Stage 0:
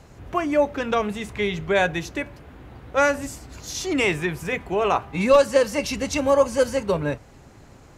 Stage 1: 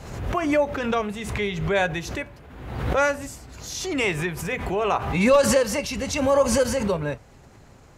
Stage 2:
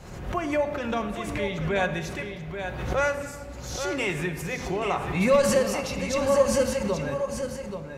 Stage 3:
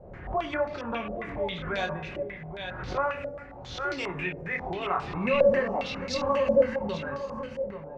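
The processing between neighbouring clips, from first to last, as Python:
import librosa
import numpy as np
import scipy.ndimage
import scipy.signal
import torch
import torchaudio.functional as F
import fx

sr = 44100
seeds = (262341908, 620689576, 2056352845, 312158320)

y1 = fx.peak_eq(x, sr, hz=300.0, db=-4.0, octaves=0.37)
y1 = fx.pre_swell(y1, sr, db_per_s=52.0)
y1 = F.gain(torch.from_numpy(y1), -2.0).numpy()
y2 = y1 + 10.0 ** (-8.0 / 20.0) * np.pad(y1, (int(832 * sr / 1000.0), 0))[:len(y1)]
y2 = fx.room_shoebox(y2, sr, seeds[0], volume_m3=2800.0, walls='mixed', distance_m=0.96)
y2 = F.gain(torch.from_numpy(y2), -5.0).numpy()
y3 = fx.chorus_voices(y2, sr, voices=4, hz=0.63, base_ms=24, depth_ms=2.3, mix_pct=35)
y3 = fx.filter_held_lowpass(y3, sr, hz=7.4, low_hz=590.0, high_hz=4700.0)
y3 = F.gain(torch.from_numpy(y3), -3.5).numpy()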